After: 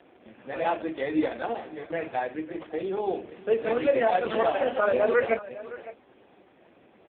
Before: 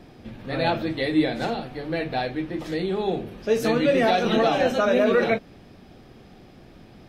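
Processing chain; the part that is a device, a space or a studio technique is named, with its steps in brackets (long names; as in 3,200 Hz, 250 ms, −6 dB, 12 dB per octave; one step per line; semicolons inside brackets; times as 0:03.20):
0:01.85–0:02.81: noise gate with hold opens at −22 dBFS
satellite phone (band-pass filter 370–3,200 Hz; single-tap delay 561 ms −16 dB; AMR narrowband 4.75 kbit/s 8,000 Hz)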